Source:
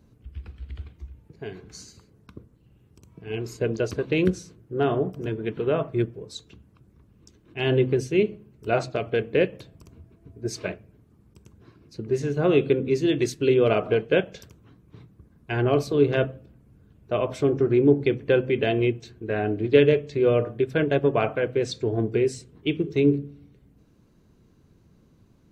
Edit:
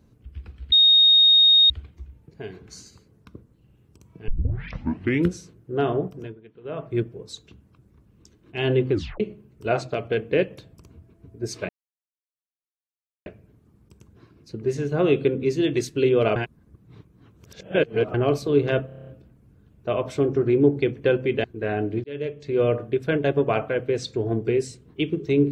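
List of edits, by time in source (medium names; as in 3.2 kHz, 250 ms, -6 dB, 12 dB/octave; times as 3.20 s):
0.72 s: add tone 3.72 kHz -11.5 dBFS 0.98 s
3.30 s: tape start 1.04 s
5.05–6.01 s: dip -20 dB, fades 0.38 s
7.94 s: tape stop 0.28 s
10.71 s: insert silence 1.57 s
13.81–15.59 s: reverse
16.31 s: stutter 0.03 s, 8 plays
18.68–19.11 s: delete
19.71–20.34 s: fade in linear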